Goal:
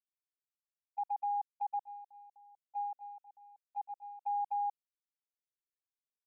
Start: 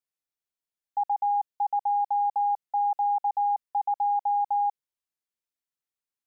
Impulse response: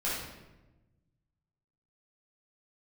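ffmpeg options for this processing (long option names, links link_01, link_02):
-filter_complex "[0:a]asplit=3[link_01][link_02][link_03];[link_01]afade=type=out:start_time=1.77:duration=0.02[link_04];[link_02]adynamicequalizer=threshold=0.01:dfrequency=1000:dqfactor=1.2:tfrequency=1000:tqfactor=1.2:attack=5:release=100:ratio=0.375:range=3.5:mode=cutabove:tftype=bell,afade=type=in:start_time=1.77:duration=0.02,afade=type=out:start_time=4.21:duration=0.02[link_05];[link_03]afade=type=in:start_time=4.21:duration=0.02[link_06];[link_04][link_05][link_06]amix=inputs=3:normalize=0,agate=range=-26dB:threshold=-26dB:ratio=16:detection=peak,alimiter=level_in=2.5dB:limit=-24dB:level=0:latency=1:release=25,volume=-2.5dB,volume=-3.5dB"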